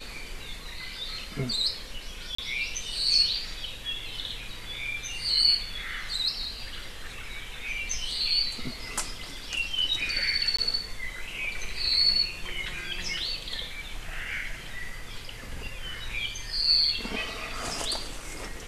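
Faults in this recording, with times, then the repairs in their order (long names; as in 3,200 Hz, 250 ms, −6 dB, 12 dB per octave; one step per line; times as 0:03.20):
0:02.35–0:02.38: drop-out 34 ms
0:10.57–0:10.59: drop-out 15 ms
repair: repair the gap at 0:02.35, 34 ms
repair the gap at 0:10.57, 15 ms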